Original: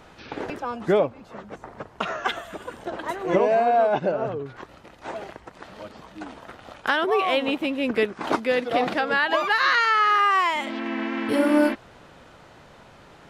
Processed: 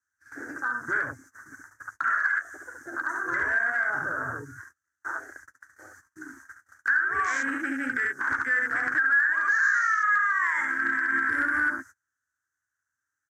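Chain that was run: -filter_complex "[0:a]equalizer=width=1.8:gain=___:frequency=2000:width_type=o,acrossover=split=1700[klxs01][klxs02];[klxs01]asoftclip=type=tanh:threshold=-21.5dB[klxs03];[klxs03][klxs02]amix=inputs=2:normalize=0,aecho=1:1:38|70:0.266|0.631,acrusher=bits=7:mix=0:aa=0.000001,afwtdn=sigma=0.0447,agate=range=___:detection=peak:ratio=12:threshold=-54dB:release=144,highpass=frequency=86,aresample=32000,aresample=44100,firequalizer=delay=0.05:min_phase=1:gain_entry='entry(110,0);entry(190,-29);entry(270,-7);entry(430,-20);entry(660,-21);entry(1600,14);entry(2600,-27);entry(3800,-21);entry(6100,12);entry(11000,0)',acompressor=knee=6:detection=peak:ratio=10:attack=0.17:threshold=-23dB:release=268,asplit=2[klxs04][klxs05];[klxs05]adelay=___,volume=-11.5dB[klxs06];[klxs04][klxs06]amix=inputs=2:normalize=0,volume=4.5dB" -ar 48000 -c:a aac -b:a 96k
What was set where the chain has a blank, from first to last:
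5, -31dB, 12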